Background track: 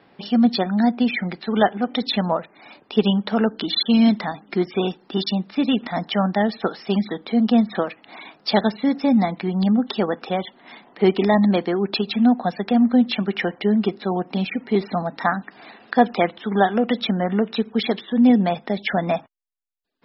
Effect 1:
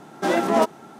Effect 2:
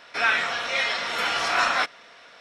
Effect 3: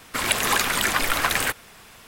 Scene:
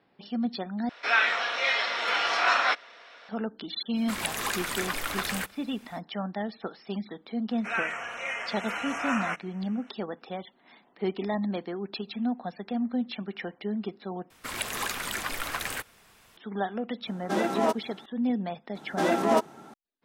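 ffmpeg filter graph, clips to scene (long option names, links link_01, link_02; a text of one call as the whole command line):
ffmpeg -i bed.wav -i cue0.wav -i cue1.wav -i cue2.wav -filter_complex "[2:a]asplit=2[link_01][link_02];[3:a]asplit=2[link_03][link_04];[1:a]asplit=2[link_05][link_06];[0:a]volume=-13dB[link_07];[link_01]acrossover=split=290 5900:gain=0.2 1 0.178[link_08][link_09][link_10];[link_08][link_09][link_10]amix=inputs=3:normalize=0[link_11];[link_02]asuperstop=centerf=4200:order=12:qfactor=1.5[link_12];[link_07]asplit=3[link_13][link_14][link_15];[link_13]atrim=end=0.894[link_16];[link_11]atrim=end=2.4,asetpts=PTS-STARTPTS,volume=-1dB[link_17];[link_14]atrim=start=3.286:end=14.304[link_18];[link_04]atrim=end=2.07,asetpts=PTS-STARTPTS,volume=-10.5dB[link_19];[link_15]atrim=start=16.366[link_20];[link_03]atrim=end=2.07,asetpts=PTS-STARTPTS,volume=-9.5dB,afade=type=in:duration=0.05,afade=type=out:start_time=2.02:duration=0.05,adelay=3940[link_21];[link_12]atrim=end=2.4,asetpts=PTS-STARTPTS,volume=-8dB,afade=type=in:duration=0.004:curve=hsin,afade=type=out:start_time=2.396:duration=0.004:curve=hsin,adelay=7500[link_22];[link_05]atrim=end=0.99,asetpts=PTS-STARTPTS,volume=-6.5dB,afade=type=in:duration=0.004:curve=hsin,afade=type=out:start_time=0.986:duration=0.004:curve=hsin,adelay=17070[link_23];[link_06]atrim=end=0.99,asetpts=PTS-STARTPTS,volume=-4dB,afade=type=in:duration=0.004:curve=hsin,afade=type=out:start_time=0.986:duration=0.004:curve=hsin,adelay=18750[link_24];[link_16][link_17]acrossfade=duration=0.004:curve1=hsin:curve2=hsin[link_25];[link_25][link_18]acrossfade=duration=0.004:curve1=hsin:curve2=hsin[link_26];[link_26][link_19]acrossfade=duration=0.004:curve1=hsin:curve2=hsin[link_27];[link_27][link_20]acrossfade=duration=0.004:curve1=hsin:curve2=hsin[link_28];[link_28][link_21][link_22][link_23][link_24]amix=inputs=5:normalize=0" out.wav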